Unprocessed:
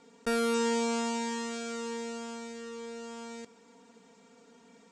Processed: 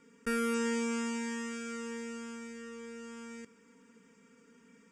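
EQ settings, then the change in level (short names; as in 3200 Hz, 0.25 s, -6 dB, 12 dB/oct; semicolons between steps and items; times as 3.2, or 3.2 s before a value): bell 4700 Hz +12.5 dB 0.21 oct; fixed phaser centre 1800 Hz, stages 4; 0.0 dB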